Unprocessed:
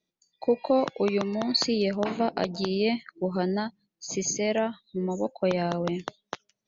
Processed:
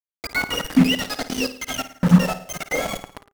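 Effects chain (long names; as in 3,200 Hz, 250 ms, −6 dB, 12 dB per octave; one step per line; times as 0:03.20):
frequency axis turned over on the octave scale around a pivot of 760 Hz
in parallel at −8 dB: slack as between gear wheels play −27.5 dBFS
on the sum: comb filter 2.9 ms, depth 83%
bit reduction 4 bits
hum removal 201.3 Hz, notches 5
on a send: repeating echo 109 ms, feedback 53%, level −13 dB
on the sum: wrong playback speed 7.5 ips tape played at 15 ips
tilt shelving filter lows +6.5 dB, about 910 Hz
auto-filter bell 0.37 Hz 580–4,700 Hz +8 dB
level −1 dB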